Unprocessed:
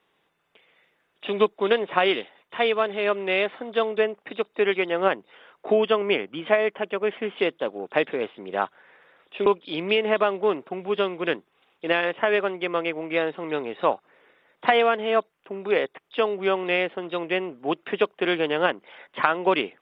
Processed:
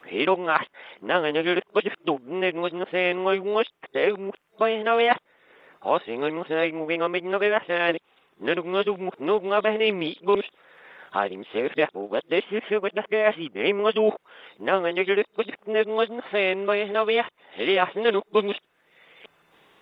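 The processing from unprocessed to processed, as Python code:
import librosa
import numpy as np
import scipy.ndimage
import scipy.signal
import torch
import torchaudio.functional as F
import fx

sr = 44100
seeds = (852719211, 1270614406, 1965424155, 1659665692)

y = x[::-1].copy()
y = fx.band_squash(y, sr, depth_pct=40)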